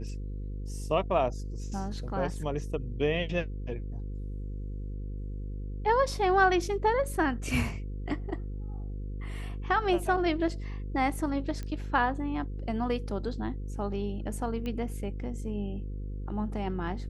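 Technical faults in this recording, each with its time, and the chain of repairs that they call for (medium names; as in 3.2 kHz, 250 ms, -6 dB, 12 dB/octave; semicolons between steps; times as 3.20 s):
buzz 50 Hz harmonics 10 -36 dBFS
11.63 s: pop -24 dBFS
14.66 s: pop -24 dBFS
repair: de-click; de-hum 50 Hz, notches 10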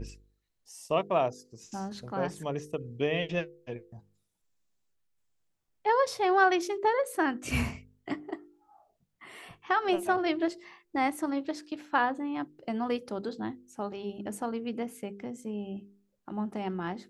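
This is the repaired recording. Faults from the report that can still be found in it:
nothing left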